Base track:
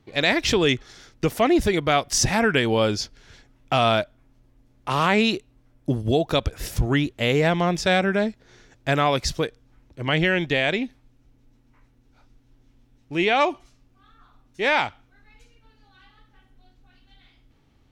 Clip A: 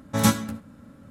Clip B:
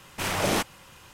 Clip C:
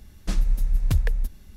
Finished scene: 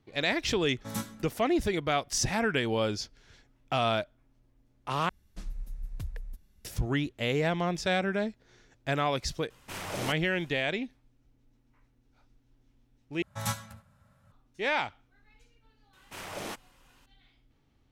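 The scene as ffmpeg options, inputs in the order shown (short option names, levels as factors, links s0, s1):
-filter_complex "[1:a]asplit=2[s0][s1];[2:a]asplit=2[s2][s3];[0:a]volume=0.398[s4];[s0]highshelf=f=11000:g=7.5[s5];[s1]firequalizer=gain_entry='entry(130,0);entry(300,-25);entry(630,0)':delay=0.05:min_phase=1[s6];[s3]bass=f=250:g=-4,treble=f=4000:g=-1[s7];[s4]asplit=3[s8][s9][s10];[s8]atrim=end=5.094[s11];[3:a]atrim=end=1.56,asetpts=PTS-STARTPTS,volume=0.15[s12];[s9]atrim=start=6.646:end=13.224[s13];[s6]atrim=end=1.1,asetpts=PTS-STARTPTS,volume=0.335[s14];[s10]atrim=start=14.316[s15];[s5]atrim=end=1.1,asetpts=PTS-STARTPTS,volume=0.158,afade=t=in:d=0.004:c=hsin,afade=t=out:st=1.096:d=0.004:c=hsin,adelay=710[s16];[s2]atrim=end=1.13,asetpts=PTS-STARTPTS,volume=0.299,afade=t=in:d=0.004:c=hsin,afade=t=out:st=1.126:d=0.004:c=hsin,adelay=9500[s17];[s7]atrim=end=1.13,asetpts=PTS-STARTPTS,volume=0.224,afade=t=in:d=0.004:c=hsin,afade=t=out:st=1.126:d=0.004:c=hsin,adelay=15930[s18];[s11][s12]acrossfade=d=0.004:c1=hsin:c2=hsin[s19];[s19][s13]acrossfade=d=0.004:c1=hsin:c2=hsin[s20];[s20][s14]acrossfade=d=0.004:c1=hsin:c2=hsin[s21];[s21][s15]acrossfade=d=0.004:c1=hsin:c2=hsin[s22];[s22][s16][s17][s18]amix=inputs=4:normalize=0"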